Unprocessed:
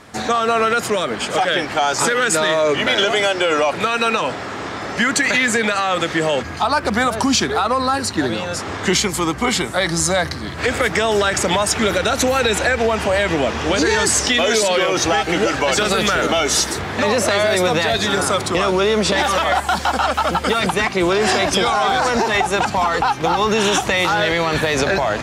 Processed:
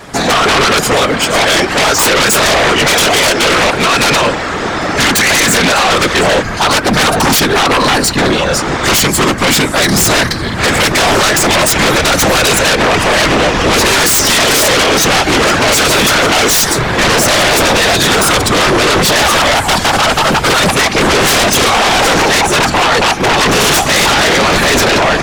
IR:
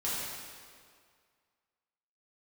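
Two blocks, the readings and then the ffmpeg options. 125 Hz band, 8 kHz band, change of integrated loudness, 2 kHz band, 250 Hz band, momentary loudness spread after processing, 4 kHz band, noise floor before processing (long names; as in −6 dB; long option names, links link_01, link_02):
+9.5 dB, +10.0 dB, +8.0 dB, +8.5 dB, +7.0 dB, 3 LU, +10.5 dB, −28 dBFS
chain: -af "aeval=exprs='0.531*(cos(1*acos(clip(val(0)/0.531,-1,1)))-cos(1*PI/2))+0.0531*(cos(5*acos(clip(val(0)/0.531,-1,1)))-cos(5*PI/2))+0.0596*(cos(7*acos(clip(val(0)/0.531,-1,1)))-cos(7*PI/2))':channel_layout=same,afftfilt=real='hypot(re,im)*cos(2*PI*random(0))':imag='hypot(re,im)*sin(2*PI*random(1))':win_size=512:overlap=0.75,aeval=exprs='0.473*sin(PI/2*6.31*val(0)/0.473)':channel_layout=same"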